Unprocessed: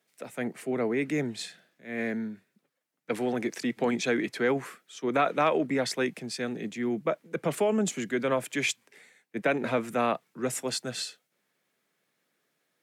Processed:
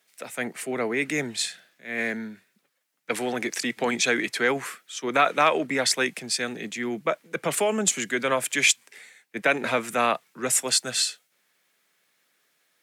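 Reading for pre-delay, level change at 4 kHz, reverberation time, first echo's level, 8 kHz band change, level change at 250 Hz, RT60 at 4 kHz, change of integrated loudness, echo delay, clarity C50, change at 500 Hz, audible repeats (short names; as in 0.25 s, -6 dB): none, +9.5 dB, none, none, +12.5 dB, -1.0 dB, none, +4.5 dB, none, none, +1.5 dB, none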